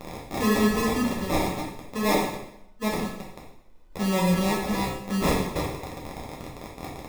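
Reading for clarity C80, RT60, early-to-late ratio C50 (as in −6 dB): 6.5 dB, 0.80 s, 3.0 dB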